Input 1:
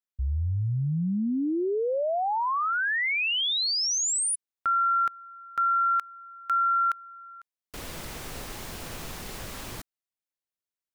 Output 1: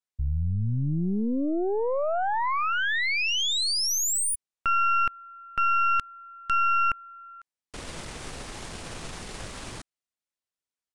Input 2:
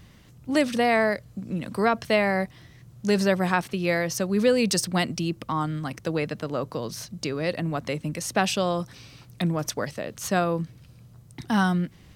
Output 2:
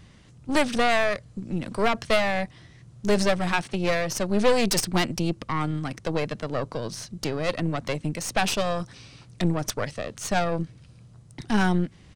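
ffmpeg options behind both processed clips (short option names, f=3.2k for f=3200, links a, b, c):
-af "aresample=22050,aresample=44100,aeval=exprs='0.447*(cos(1*acos(clip(val(0)/0.447,-1,1)))-cos(1*PI/2))+0.0708*(cos(4*acos(clip(val(0)/0.447,-1,1)))-cos(4*PI/2))+0.0355*(cos(6*acos(clip(val(0)/0.447,-1,1)))-cos(6*PI/2))+0.0562*(cos(8*acos(clip(val(0)/0.447,-1,1)))-cos(8*PI/2))':c=same,aeval=exprs='clip(val(0),-1,0.0596)':c=same"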